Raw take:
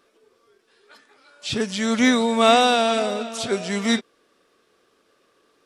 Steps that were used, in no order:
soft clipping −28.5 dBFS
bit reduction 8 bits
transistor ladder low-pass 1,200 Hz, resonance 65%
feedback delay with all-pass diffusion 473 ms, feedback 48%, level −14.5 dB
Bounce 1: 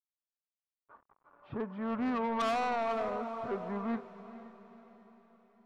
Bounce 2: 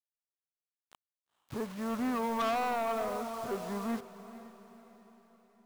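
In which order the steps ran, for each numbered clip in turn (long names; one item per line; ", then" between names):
bit reduction, then transistor ladder low-pass, then soft clipping, then feedback delay with all-pass diffusion
transistor ladder low-pass, then soft clipping, then bit reduction, then feedback delay with all-pass diffusion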